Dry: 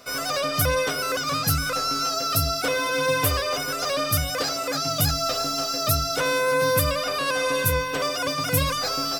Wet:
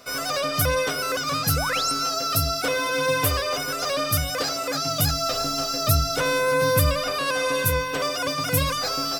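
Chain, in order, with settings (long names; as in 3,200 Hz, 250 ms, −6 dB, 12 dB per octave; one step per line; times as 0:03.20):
0:01.56–0:01.92: sound drawn into the spectrogram rise 440–10,000 Hz −29 dBFS
0:05.33–0:07.11: low-shelf EQ 140 Hz +7.5 dB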